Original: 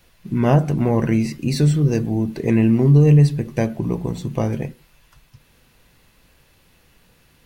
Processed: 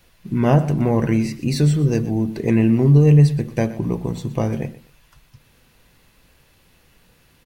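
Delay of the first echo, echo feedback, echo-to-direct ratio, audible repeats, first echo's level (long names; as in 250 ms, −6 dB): 122 ms, 25%, −17.0 dB, 2, −17.0 dB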